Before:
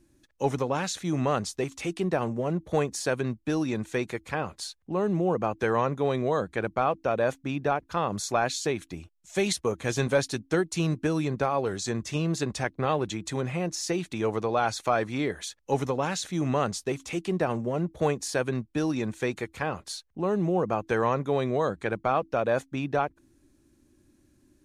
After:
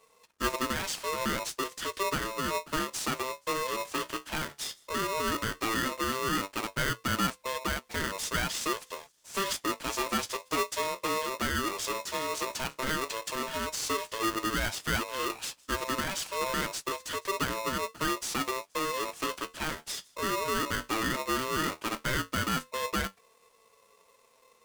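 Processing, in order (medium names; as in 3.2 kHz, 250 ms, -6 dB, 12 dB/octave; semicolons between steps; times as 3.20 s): CVSD coder 64 kbps; high-pass 220 Hz 6 dB/octave; in parallel at +0.5 dB: compression, threshold -35 dBFS, peak gain reduction 15.5 dB; on the sum: flange 0.12 Hz, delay 6.3 ms, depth 8.6 ms, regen +59%; saturation -20.5 dBFS, distortion -18 dB; on a send: feedback echo behind a high-pass 158 ms, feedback 65%, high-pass 4.9 kHz, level -22.5 dB; on the sum: polarity switched at an audio rate 780 Hz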